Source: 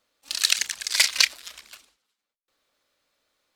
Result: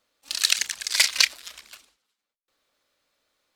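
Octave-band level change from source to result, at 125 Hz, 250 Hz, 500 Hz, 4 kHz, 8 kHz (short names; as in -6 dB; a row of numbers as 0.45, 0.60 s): n/a, n/a, 0.0 dB, 0.0 dB, 0.0 dB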